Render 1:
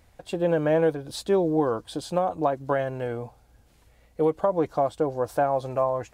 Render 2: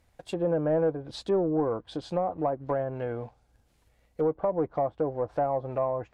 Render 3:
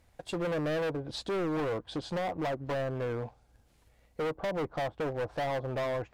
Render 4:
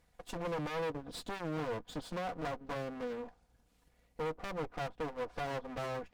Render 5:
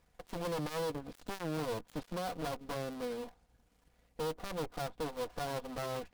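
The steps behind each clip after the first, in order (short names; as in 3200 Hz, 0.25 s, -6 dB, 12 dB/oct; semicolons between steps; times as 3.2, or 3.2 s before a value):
sample leveller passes 1; treble ducked by the level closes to 1100 Hz, closed at -19.5 dBFS; gain -6 dB
overloaded stage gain 31 dB; gain +1.5 dB
minimum comb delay 4.1 ms; gain -4 dB
switching dead time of 0.19 ms; gain +1 dB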